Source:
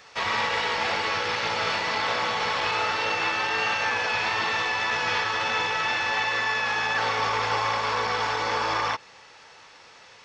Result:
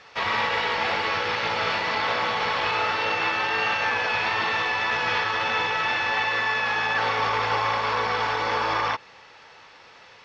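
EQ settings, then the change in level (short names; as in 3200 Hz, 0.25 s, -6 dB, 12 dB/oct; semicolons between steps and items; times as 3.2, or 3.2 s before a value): LPF 4400 Hz 12 dB/oct; +1.5 dB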